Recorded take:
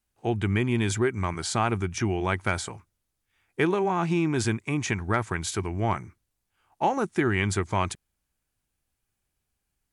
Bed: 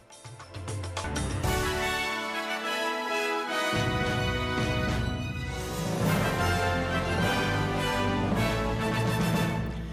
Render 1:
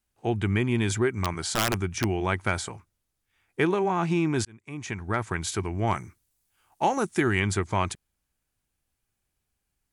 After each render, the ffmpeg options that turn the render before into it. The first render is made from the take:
-filter_complex "[0:a]asettb=1/sr,asplit=3[s0][s1][s2];[s0]atrim=end=1.134[s3];[s1]atrim=start=1.13:end=2.22,asetpts=PTS-STARTPTS,afade=t=in:d=0.004:c=qsin,afade=t=out:st=1.086:d=0.004:c=qsin,aeval=exprs='(mod(6.68*val(0)+1,2)-1)/6.68':c=same[s4];[s2]atrim=start=2.216[s5];[s3][s4]acrossfade=d=0.004:c1=hsin:c2=qsin[s6];[s6][s5]acrossfade=d=0.004:c1=qsin:c2=hsin,asettb=1/sr,asplit=3[s7][s8][s9];[s7]atrim=end=5.874[s10];[s8]atrim=start=5.87:end=7.4,asetpts=PTS-STARTPTS,afade=t=in:d=0.004:c=qsin,afade=t=out:st=1.526:d=0.004:c=qsin,highshelf=f=4800:g=11[s11];[s9]atrim=start=7.396[s12];[s10][s11]acrossfade=d=0.004:c1=hsin:c2=qsin[s13];[s13][s12]acrossfade=d=0.004:c1=qsin:c2=hsin,asplit=2[s14][s15];[s14]atrim=end=4.45,asetpts=PTS-STARTPTS,afade=t=out:st=4.446:d=0.004:c=hsin[s16];[s15]atrim=start=4.45,asetpts=PTS-STARTPTS,afade=t=in:d=0.91[s17];[s16][s17]concat=n=2:v=0:a=1"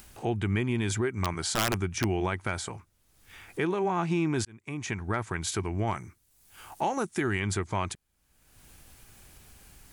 -af "acompressor=mode=upward:threshold=0.0282:ratio=2.5,alimiter=limit=0.119:level=0:latency=1:release=206"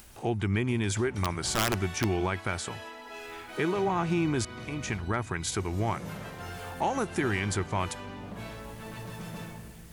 -filter_complex "[1:a]volume=0.2[s0];[0:a][s0]amix=inputs=2:normalize=0"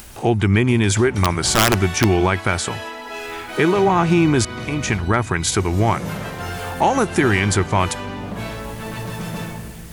-af "volume=3.98"

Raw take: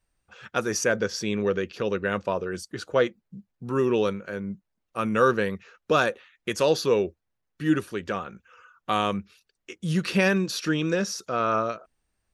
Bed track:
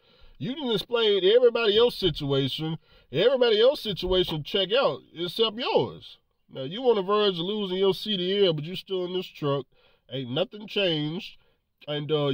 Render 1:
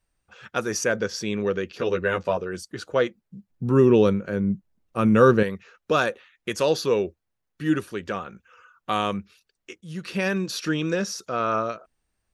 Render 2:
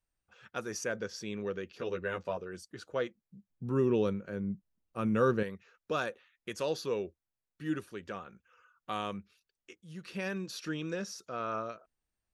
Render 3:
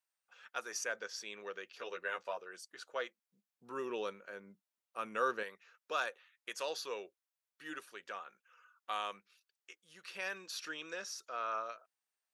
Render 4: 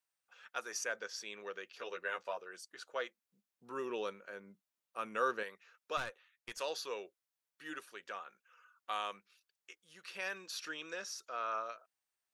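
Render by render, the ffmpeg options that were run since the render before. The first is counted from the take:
-filter_complex "[0:a]asettb=1/sr,asplit=3[s0][s1][s2];[s0]atrim=end=1.784[s3];[s1]atrim=start=1.78:end=2.37,asetpts=PTS-STARTPTS,afade=t=in:d=0.004:c=qsin,afade=t=out:st=0.586:d=0.004:c=qsin,asplit=2[s4][s5];[s5]adelay=12,volume=0.794[s6];[s4][s6]amix=inputs=2:normalize=0,atrim=end_sample=26019[s7];[s2]atrim=start=2.366[s8];[s3][s7]acrossfade=d=0.004:c1=hsin:c2=qsin[s9];[s9][s8]acrossfade=d=0.004:c1=qsin:c2=hsin,asettb=1/sr,asplit=3[s10][s11][s12];[s10]atrim=end=3.504[s13];[s11]atrim=start=3.5:end=5.43,asetpts=PTS-STARTPTS,afade=t=in:d=0.004:c=qsin,afade=t=out:st=1.926:d=0.004:c=qsin,lowshelf=f=430:g=11.5[s14];[s12]atrim=start=5.426[s15];[s13][s14]acrossfade=d=0.004:c1=hsin:c2=qsin[s16];[s16][s15]acrossfade=d=0.004:c1=qsin:c2=hsin,asplit=2[s17][s18];[s17]atrim=end=9.81,asetpts=PTS-STARTPTS,afade=t=out:st=9.806:d=0.004:c=hsin:silence=0.177828[s19];[s18]atrim=start=9.81,asetpts=PTS-STARTPTS,afade=t=in:d=0.74:silence=0.177828[s20];[s19][s20]concat=n=2:v=0:a=1"
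-af "volume=0.266"
-af "highpass=760"
-filter_complex "[0:a]asettb=1/sr,asplit=3[s0][s1][s2];[s0]atrim=end=5.974[s3];[s1]atrim=start=5.97:end=6.58,asetpts=PTS-STARTPTS,afade=t=in:d=0.004:c=qsin,afade=t=out:st=0.606:d=0.004:c=qsin,aeval=exprs='(tanh(44.7*val(0)+0.6)-tanh(0.6))/44.7':c=same[s4];[s2]atrim=start=6.576[s5];[s3][s4]acrossfade=d=0.004:c1=hsin:c2=qsin[s6];[s6][s5]acrossfade=d=0.004:c1=qsin:c2=hsin"

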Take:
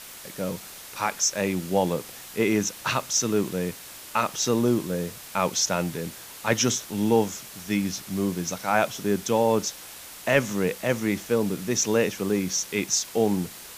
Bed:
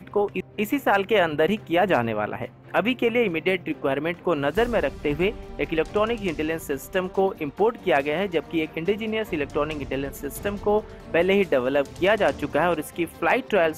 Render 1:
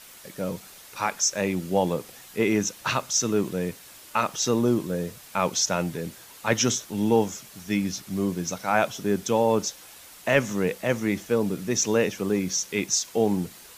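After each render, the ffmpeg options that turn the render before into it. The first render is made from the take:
-af "afftdn=nr=6:nf=-43"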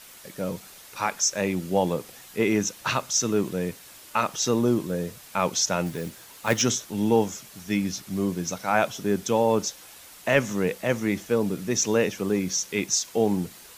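-filter_complex "[0:a]asettb=1/sr,asplit=3[s0][s1][s2];[s0]atrim=end=5.864[s3];[s1]atrim=start=5.86:end=6.62,asetpts=PTS-STARTPTS,afade=t=in:d=0.004:c=qsin,afade=t=out:st=0.756:d=0.004:c=qsin,acrusher=bits=4:mode=log:mix=0:aa=0.000001[s4];[s2]atrim=start=6.616[s5];[s3][s4]acrossfade=d=0.004:c1=hsin:c2=qsin[s6];[s6][s5]acrossfade=d=0.004:c1=qsin:c2=hsin"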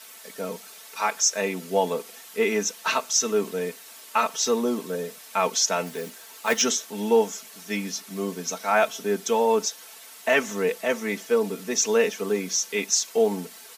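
-af "highpass=340,aecho=1:1:4.5:0.75"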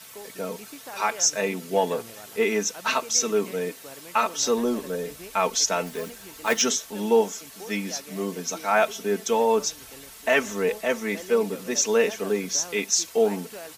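-filter_complex "[1:a]volume=0.0944[s0];[0:a][s0]amix=inputs=2:normalize=0"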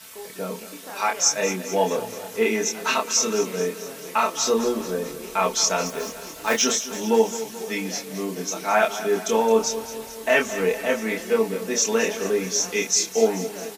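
-filter_complex "[0:a]asplit=2[s0][s1];[s1]adelay=27,volume=0.708[s2];[s0][s2]amix=inputs=2:normalize=0,asplit=2[s3][s4];[s4]aecho=0:1:217|434|651|868|1085|1302:0.211|0.127|0.0761|0.0457|0.0274|0.0164[s5];[s3][s5]amix=inputs=2:normalize=0"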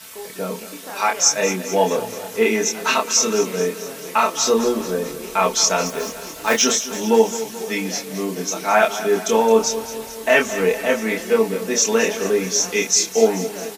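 -af "volume=1.58"

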